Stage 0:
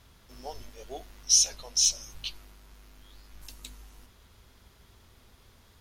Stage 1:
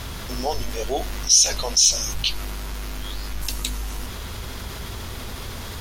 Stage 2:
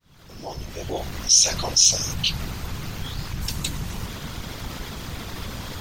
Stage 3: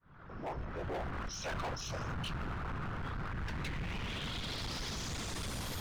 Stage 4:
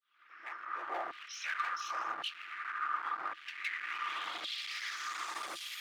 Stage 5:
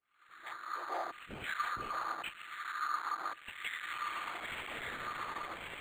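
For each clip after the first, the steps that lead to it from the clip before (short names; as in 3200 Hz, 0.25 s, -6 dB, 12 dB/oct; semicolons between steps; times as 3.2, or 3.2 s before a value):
fast leveller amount 50%; gain +5 dB
opening faded in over 1.40 s; whisperiser; bell 11000 Hz -10.5 dB 0.29 oct
low-pass sweep 1400 Hz -> 12000 Hz, 3.27–5.75; hard clip -30.5 dBFS, distortion -8 dB; gain -5 dB
dynamic EQ 1900 Hz, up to +7 dB, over -59 dBFS, Q 1.2; LFO high-pass saw down 0.9 Hz 640–3400 Hz; small resonant body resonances 330/1200 Hz, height 15 dB, ringing for 65 ms; gain -4.5 dB
decimation joined by straight lines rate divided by 8×; gain +1 dB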